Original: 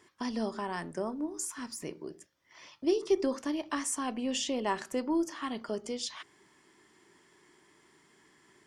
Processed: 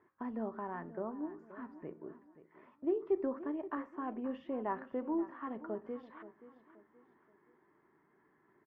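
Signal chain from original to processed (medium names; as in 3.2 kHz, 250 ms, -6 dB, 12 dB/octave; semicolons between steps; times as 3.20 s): low-pass 1.6 kHz 24 dB/octave; bass shelf 67 Hz -8 dB; feedback delay 527 ms, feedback 38%, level -15 dB; trim -5 dB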